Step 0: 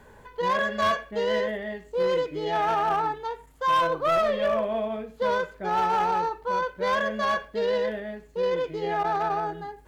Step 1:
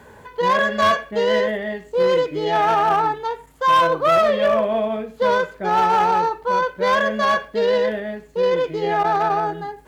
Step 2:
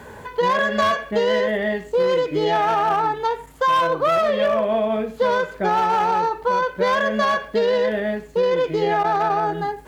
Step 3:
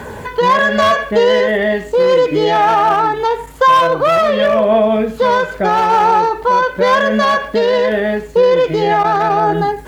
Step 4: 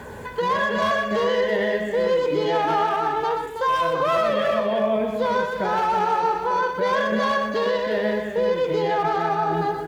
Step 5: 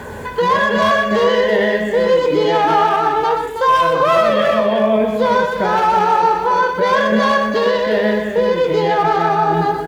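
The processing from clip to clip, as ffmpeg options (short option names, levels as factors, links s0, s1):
-af "highpass=72,volume=2.24"
-af "acompressor=threshold=0.0794:ratio=6,volume=1.88"
-filter_complex "[0:a]asplit=2[s0][s1];[s1]alimiter=limit=0.112:level=0:latency=1:release=79,volume=1[s2];[s0][s2]amix=inputs=2:normalize=0,aphaser=in_gain=1:out_gain=1:delay=4.1:decay=0.22:speed=0.21:type=triangular,volume=1.5"
-filter_complex "[0:a]alimiter=limit=0.447:level=0:latency=1,asplit=2[s0][s1];[s1]aecho=0:1:122|325|363:0.473|0.422|0.282[s2];[s0][s2]amix=inputs=2:normalize=0,volume=0.355"
-filter_complex "[0:a]asplit=2[s0][s1];[s1]adelay=23,volume=0.282[s2];[s0][s2]amix=inputs=2:normalize=0,volume=2.24"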